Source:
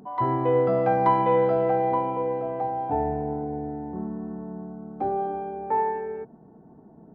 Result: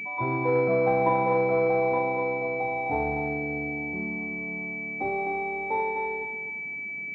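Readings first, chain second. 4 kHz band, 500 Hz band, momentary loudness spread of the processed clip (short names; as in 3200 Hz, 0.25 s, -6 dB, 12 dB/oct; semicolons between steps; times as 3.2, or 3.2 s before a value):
n/a, -1.0 dB, 9 LU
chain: thinning echo 0.253 s, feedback 36%, high-pass 870 Hz, level -3 dB; pulse-width modulation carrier 2300 Hz; gain -2.5 dB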